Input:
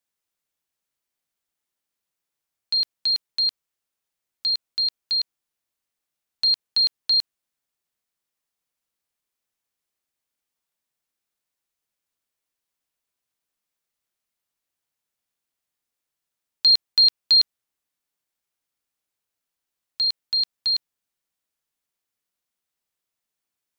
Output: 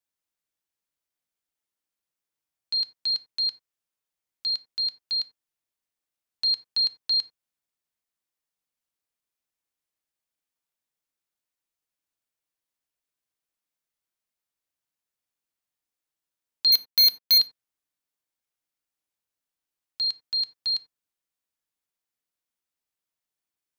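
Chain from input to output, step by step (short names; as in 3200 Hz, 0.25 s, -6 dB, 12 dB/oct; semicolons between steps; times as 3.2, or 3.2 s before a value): 16.72–17.38 sample leveller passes 5; reverb, pre-delay 3 ms, DRR 12 dB; gain -5 dB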